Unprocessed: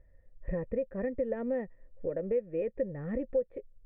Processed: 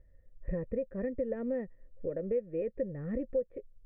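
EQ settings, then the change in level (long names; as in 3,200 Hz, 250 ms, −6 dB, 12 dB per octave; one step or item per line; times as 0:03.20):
parametric band 830 Hz −7 dB 0.71 octaves
high-shelf EQ 2,100 Hz −8 dB
0.0 dB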